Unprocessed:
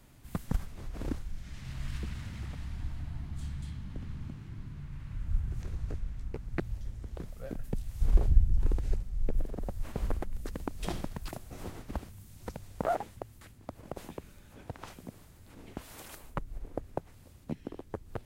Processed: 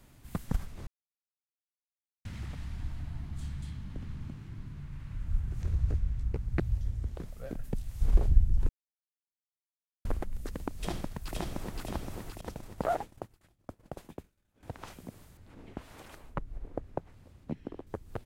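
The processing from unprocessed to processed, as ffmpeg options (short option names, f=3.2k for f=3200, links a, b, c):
-filter_complex "[0:a]asettb=1/sr,asplit=3[a][b][c];[a]atrim=end=5.614[d];[b]atrim=start=5.61:end=7.12,asetpts=PTS-STARTPTS,afade=t=in:d=0.004:c=qsin,afade=t=out:st=1.506:d=0.004:c=qsin,equalizer=f=72:t=o:w=2:g=9.5[e];[c]atrim=start=7.116[f];[d][e]acrossfade=d=0.004:c1=hsin:c2=qsin[g];[g][f]acrossfade=d=0.004:c1=qsin:c2=hsin,asplit=2[h][i];[i]afade=t=in:st=10.77:d=0.01,afade=t=out:st=11.78:d=0.01,aecho=0:1:520|1040|1560|2080|2600|3120|3640|4160:0.891251|0.490188|0.269603|0.148282|0.081555|0.0448553|0.0246704|0.0135687[j];[h][j]amix=inputs=2:normalize=0,asettb=1/sr,asplit=3[k][l][m];[k]atrim=end=12.414[n];[l]atrim=start=12.41:end=14.63,asetpts=PTS-STARTPTS,afade=t=in:d=0.004:c=qsin,afade=t=out:st=2.216:d=0.004:c=qsin,agate=range=-33dB:threshold=-40dB:ratio=3:release=100:detection=peak[o];[m]atrim=start=14.626[p];[n][o]acrossfade=d=0.004:c1=hsin:c2=qsin[q];[q][p]acrossfade=d=0.004:c1=qsin:c2=hsin,asettb=1/sr,asplit=3[r][s][t];[r]atrim=end=15.374[u];[s]atrim=start=15.37:end=17.87,asetpts=PTS-STARTPTS,afade=t=in:d=0.004:c=qsin,afade=t=out:st=2.496:d=0.004:c=qsin,lowpass=f=2.7k:p=1[v];[t]atrim=start=17.866[w];[u][v]acrossfade=d=0.004:c1=hsin:c2=qsin[x];[x][w]acrossfade=d=0.004:c1=qsin:c2=hsin,asplit=5[y][z][aa][ab][ac];[y]atrim=end=0.87,asetpts=PTS-STARTPTS,afade=t=out:st=0.866:d=0.004:c=hsin[ad];[z]atrim=start=0.87:end=2.25,asetpts=PTS-STARTPTS,volume=0[ae];[aa]atrim=start=2.25:end=8.69,asetpts=PTS-STARTPTS,afade=t=in:d=0.004:c=hsin,afade=t=out:st=6.436:d=0.004:c=hsin[af];[ab]atrim=start=8.69:end=10.05,asetpts=PTS-STARTPTS,volume=0[ag];[ac]atrim=start=10.05,asetpts=PTS-STARTPTS,afade=t=in:d=0.004:c=hsin[ah];[ad][ae][af][ag][ah]concat=n=5:v=0:a=1"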